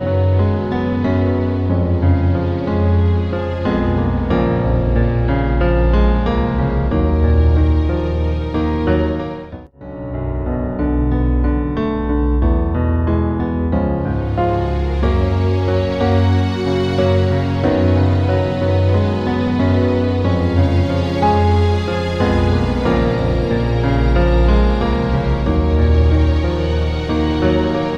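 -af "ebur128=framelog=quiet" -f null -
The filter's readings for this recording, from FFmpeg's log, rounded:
Integrated loudness:
  I:         -16.6 LUFS
  Threshold: -26.7 LUFS
Loudness range:
  LRA:         3.0 LU
  Threshold: -36.7 LUFS
  LRA low:   -18.7 LUFS
  LRA high:  -15.7 LUFS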